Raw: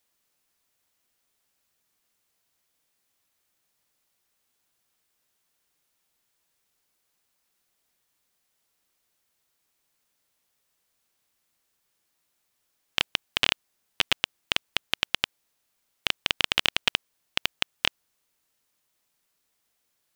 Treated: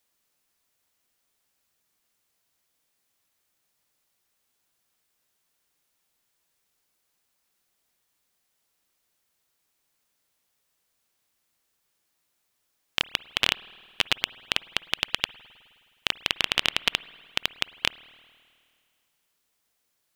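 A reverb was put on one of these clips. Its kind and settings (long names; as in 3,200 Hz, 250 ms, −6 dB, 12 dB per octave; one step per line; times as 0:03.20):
spring reverb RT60 2.2 s, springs 52 ms, chirp 55 ms, DRR 19 dB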